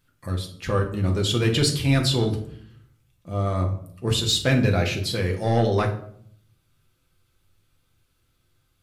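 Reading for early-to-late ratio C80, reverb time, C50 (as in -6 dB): 14.0 dB, 0.60 s, 9.5 dB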